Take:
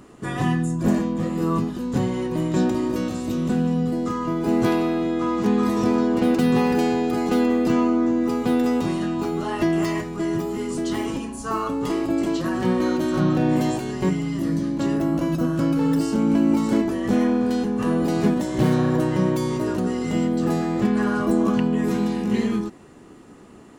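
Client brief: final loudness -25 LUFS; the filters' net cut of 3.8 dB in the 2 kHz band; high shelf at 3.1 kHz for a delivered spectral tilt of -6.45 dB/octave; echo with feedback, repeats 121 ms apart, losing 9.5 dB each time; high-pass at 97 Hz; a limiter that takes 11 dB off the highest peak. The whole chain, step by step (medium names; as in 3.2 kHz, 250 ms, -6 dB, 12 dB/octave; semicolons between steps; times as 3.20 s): high-pass 97 Hz; peaking EQ 2 kHz -6.5 dB; treble shelf 3.1 kHz +4.5 dB; peak limiter -19 dBFS; feedback delay 121 ms, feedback 33%, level -9.5 dB; trim +1 dB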